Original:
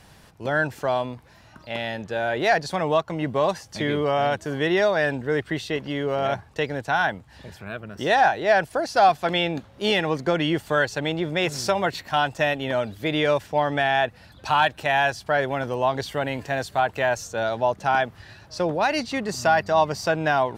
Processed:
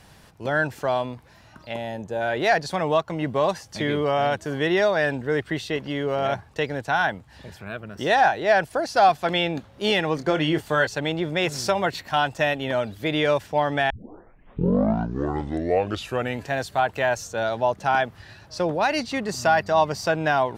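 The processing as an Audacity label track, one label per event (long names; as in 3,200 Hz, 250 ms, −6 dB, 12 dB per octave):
1.740000	2.210000	gain on a spectral selection 1,100–5,900 Hz −9 dB
10.150000	10.870000	double-tracking delay 26 ms −9.5 dB
13.900000	13.900000	tape start 2.60 s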